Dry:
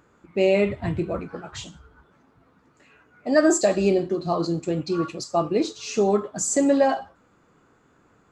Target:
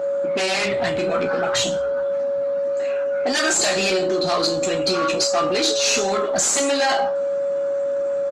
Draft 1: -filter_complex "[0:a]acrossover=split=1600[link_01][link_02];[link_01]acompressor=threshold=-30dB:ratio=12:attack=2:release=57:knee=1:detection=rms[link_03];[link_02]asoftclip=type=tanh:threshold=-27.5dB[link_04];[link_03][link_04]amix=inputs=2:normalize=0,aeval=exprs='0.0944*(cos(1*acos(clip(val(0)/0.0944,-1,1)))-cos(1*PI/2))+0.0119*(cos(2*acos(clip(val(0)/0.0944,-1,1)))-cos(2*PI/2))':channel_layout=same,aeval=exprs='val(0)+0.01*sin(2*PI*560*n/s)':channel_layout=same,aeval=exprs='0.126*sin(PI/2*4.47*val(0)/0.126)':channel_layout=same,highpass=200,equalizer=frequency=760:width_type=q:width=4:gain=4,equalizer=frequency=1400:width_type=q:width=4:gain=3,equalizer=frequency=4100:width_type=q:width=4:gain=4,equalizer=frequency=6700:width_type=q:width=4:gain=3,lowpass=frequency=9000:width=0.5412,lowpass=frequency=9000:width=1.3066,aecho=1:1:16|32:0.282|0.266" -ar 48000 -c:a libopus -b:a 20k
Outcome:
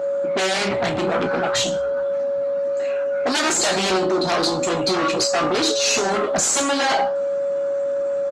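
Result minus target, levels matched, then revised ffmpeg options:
downward compressor: peak gain reduction −6 dB
-filter_complex "[0:a]acrossover=split=1600[link_01][link_02];[link_01]acompressor=threshold=-36.5dB:ratio=12:attack=2:release=57:knee=1:detection=rms[link_03];[link_02]asoftclip=type=tanh:threshold=-27.5dB[link_04];[link_03][link_04]amix=inputs=2:normalize=0,aeval=exprs='0.0944*(cos(1*acos(clip(val(0)/0.0944,-1,1)))-cos(1*PI/2))+0.0119*(cos(2*acos(clip(val(0)/0.0944,-1,1)))-cos(2*PI/2))':channel_layout=same,aeval=exprs='val(0)+0.01*sin(2*PI*560*n/s)':channel_layout=same,aeval=exprs='0.126*sin(PI/2*4.47*val(0)/0.126)':channel_layout=same,highpass=200,equalizer=frequency=760:width_type=q:width=4:gain=4,equalizer=frequency=1400:width_type=q:width=4:gain=3,equalizer=frequency=4100:width_type=q:width=4:gain=4,equalizer=frequency=6700:width_type=q:width=4:gain=3,lowpass=frequency=9000:width=0.5412,lowpass=frequency=9000:width=1.3066,aecho=1:1:16|32:0.282|0.266" -ar 48000 -c:a libopus -b:a 20k

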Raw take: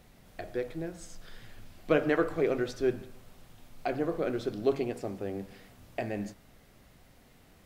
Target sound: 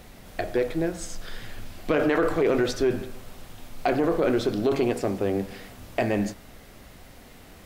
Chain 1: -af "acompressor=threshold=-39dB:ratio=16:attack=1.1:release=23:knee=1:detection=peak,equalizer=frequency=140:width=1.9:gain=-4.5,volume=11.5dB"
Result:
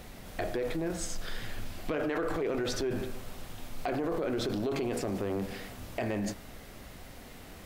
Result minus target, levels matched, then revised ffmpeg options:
downward compressor: peak gain reduction +10 dB
-af "acompressor=threshold=-28.5dB:ratio=16:attack=1.1:release=23:knee=1:detection=peak,equalizer=frequency=140:width=1.9:gain=-4.5,volume=11.5dB"

